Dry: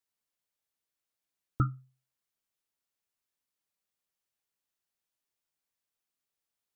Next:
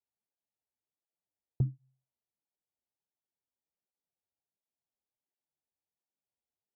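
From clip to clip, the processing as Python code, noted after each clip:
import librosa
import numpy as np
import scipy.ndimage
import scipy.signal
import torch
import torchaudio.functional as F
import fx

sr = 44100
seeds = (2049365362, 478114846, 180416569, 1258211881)

y = scipy.signal.sosfilt(scipy.signal.butter(16, 950.0, 'lowpass', fs=sr, output='sos'), x)
y = fx.flanger_cancel(y, sr, hz=1.4, depth_ms=6.9)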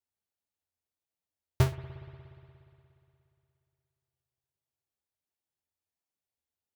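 y = fx.halfwave_hold(x, sr)
y = fx.peak_eq(y, sr, hz=82.0, db=13.0, octaves=0.38)
y = fx.rev_spring(y, sr, rt60_s=2.8, pass_ms=(59,), chirp_ms=50, drr_db=12.0)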